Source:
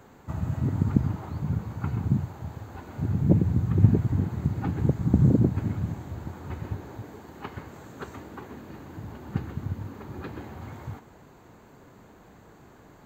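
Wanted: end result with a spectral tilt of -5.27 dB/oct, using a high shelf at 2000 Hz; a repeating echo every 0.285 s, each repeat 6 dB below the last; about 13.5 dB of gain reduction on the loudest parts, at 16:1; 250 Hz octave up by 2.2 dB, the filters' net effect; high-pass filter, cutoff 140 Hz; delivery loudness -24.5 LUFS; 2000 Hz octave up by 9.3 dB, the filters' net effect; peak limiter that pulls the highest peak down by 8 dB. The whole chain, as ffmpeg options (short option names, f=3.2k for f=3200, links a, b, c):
-af "highpass=140,equalizer=f=250:t=o:g=4,highshelf=f=2k:g=8,equalizer=f=2k:t=o:g=7.5,acompressor=threshold=-27dB:ratio=16,alimiter=limit=-23.5dB:level=0:latency=1,aecho=1:1:285|570|855|1140|1425|1710:0.501|0.251|0.125|0.0626|0.0313|0.0157,volume=11dB"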